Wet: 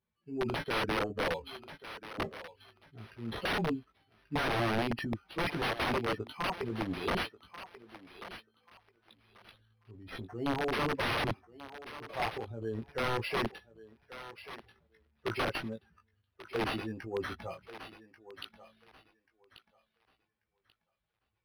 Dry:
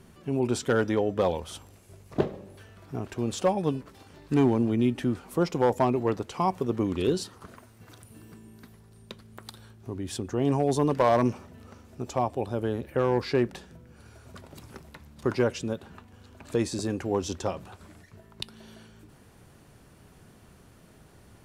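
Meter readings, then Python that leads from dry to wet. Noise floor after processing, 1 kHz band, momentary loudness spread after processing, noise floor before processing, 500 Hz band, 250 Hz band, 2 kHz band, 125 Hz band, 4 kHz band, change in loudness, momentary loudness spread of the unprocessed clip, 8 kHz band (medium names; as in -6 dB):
-83 dBFS, -5.0 dB, 17 LU, -55 dBFS, -9.5 dB, -10.0 dB, +3.5 dB, -9.5 dB, +1.5 dB, -7.5 dB, 20 LU, -12.5 dB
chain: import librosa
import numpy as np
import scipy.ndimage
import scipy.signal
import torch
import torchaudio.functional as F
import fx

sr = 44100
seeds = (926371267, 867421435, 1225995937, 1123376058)

p1 = fx.bin_expand(x, sr, power=2.0)
p2 = fx.highpass(p1, sr, hz=280.0, slope=6)
p3 = fx.transient(p2, sr, attack_db=-2, sustain_db=10)
p4 = fx.doubler(p3, sr, ms=18.0, db=-4)
p5 = (np.mod(10.0 ** (25.0 / 20.0) * p4 + 1.0, 2.0) - 1.0) / 10.0 ** (25.0 / 20.0)
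p6 = p5 + fx.echo_thinned(p5, sr, ms=1137, feedback_pct=24, hz=560.0, wet_db=-12, dry=0)
y = np.interp(np.arange(len(p6)), np.arange(len(p6))[::6], p6[::6])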